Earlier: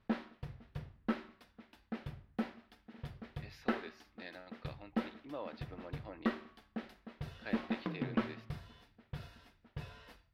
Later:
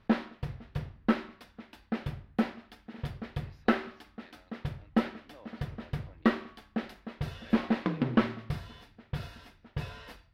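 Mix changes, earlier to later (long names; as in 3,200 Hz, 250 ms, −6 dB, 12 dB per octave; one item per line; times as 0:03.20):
speech −10.0 dB
background +9.0 dB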